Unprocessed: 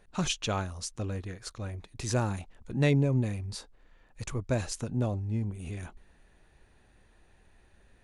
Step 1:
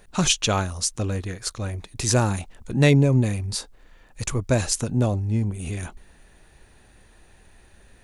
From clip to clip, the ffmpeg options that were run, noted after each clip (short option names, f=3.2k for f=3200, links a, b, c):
-af "highshelf=f=5.4k:g=8.5,volume=8dB"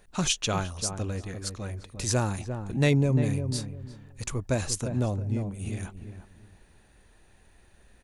-filter_complex "[0:a]asplit=2[a][b];[b]adelay=349,lowpass=f=840:p=1,volume=-7dB,asplit=2[c][d];[d]adelay=349,lowpass=f=840:p=1,volume=0.26,asplit=2[e][f];[f]adelay=349,lowpass=f=840:p=1,volume=0.26[g];[a][c][e][g]amix=inputs=4:normalize=0,volume=-6dB"